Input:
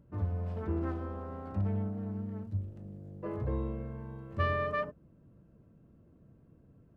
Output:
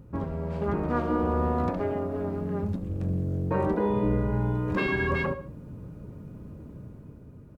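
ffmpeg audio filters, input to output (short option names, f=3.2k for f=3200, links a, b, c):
-filter_complex "[0:a]dynaudnorm=f=120:g=13:m=6dB,aecho=1:1:69|138|207:0.141|0.0452|0.0145,asetrate=40572,aresample=44100,asplit=2[a][b];[b]acompressor=threshold=-35dB:ratio=6,volume=-1dB[c];[a][c]amix=inputs=2:normalize=0,afftfilt=real='re*lt(hypot(re,im),0.282)':imag='im*lt(hypot(re,im),0.282)':win_size=1024:overlap=0.75,volume=6.5dB"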